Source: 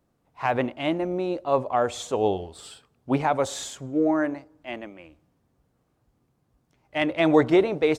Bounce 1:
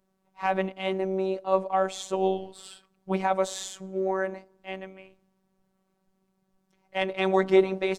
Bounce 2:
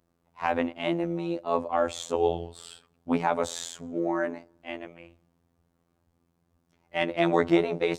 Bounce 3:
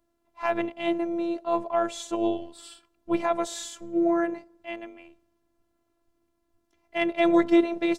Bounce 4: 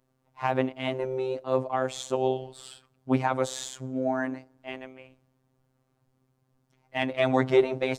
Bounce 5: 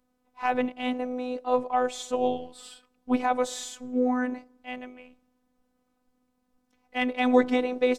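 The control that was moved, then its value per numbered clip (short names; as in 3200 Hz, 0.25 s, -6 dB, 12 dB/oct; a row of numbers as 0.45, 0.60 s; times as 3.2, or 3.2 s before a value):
robotiser, frequency: 190, 85, 340, 130, 250 Hz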